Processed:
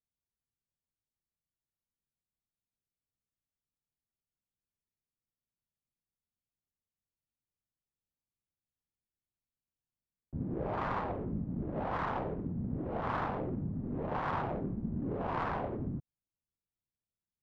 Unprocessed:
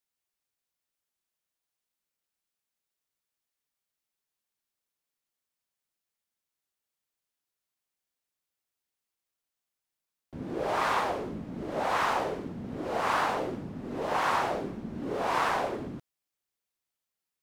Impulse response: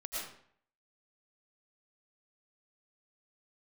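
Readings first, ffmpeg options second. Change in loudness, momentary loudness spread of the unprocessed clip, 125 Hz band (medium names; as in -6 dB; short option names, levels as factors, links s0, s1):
-6.0 dB, 11 LU, +5.0 dB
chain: -af "adynamicsmooth=sensitivity=1.5:basefreq=890,bass=f=250:g=14,treble=f=4000:g=-11,volume=0.447"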